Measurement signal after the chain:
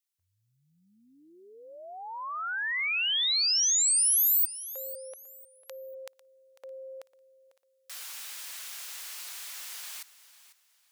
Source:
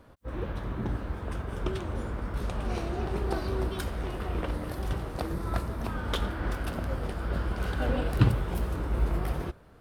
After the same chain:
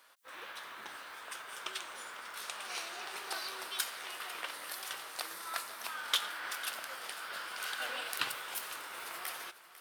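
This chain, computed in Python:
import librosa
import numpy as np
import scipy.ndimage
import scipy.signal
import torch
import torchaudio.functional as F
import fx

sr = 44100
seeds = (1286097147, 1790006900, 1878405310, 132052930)

y = scipy.signal.sosfilt(scipy.signal.butter(2, 1300.0, 'highpass', fs=sr, output='sos'), x)
y = fx.high_shelf(y, sr, hz=2800.0, db=9.5)
y = fx.echo_feedback(y, sr, ms=498, feedback_pct=29, wet_db=-16.0)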